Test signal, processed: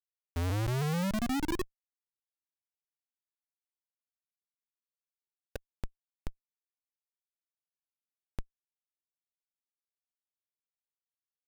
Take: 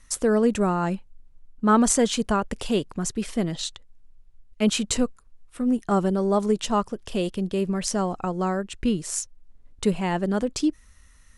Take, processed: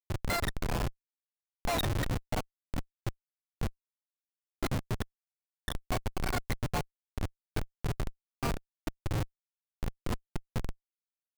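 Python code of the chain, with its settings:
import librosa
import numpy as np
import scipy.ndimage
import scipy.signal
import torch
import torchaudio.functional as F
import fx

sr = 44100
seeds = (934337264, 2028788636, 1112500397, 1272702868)

y = fx.octave_mirror(x, sr, pivot_hz=940.0)
y = fx.schmitt(y, sr, flips_db=-19.0)
y = fx.upward_expand(y, sr, threshold_db=-38.0, expansion=1.5)
y = y * 10.0 ** (-3.5 / 20.0)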